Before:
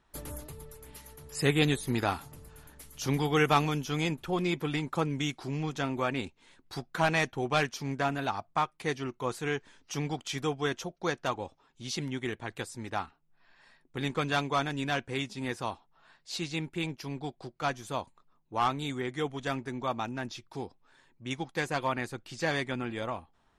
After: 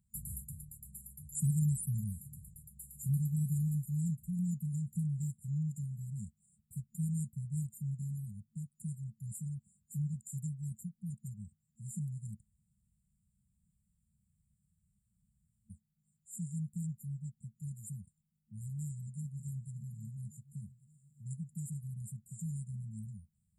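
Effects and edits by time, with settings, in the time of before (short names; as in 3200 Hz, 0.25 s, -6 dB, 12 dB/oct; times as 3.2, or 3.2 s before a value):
12.41–15.7 room tone
18.66–19.72 echo throw 0.57 s, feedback 55%, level -14.5 dB
whole clip: FFT band-reject 220–7000 Hz; HPF 77 Hz; bell 580 Hz -9.5 dB 1.5 oct; gain +2 dB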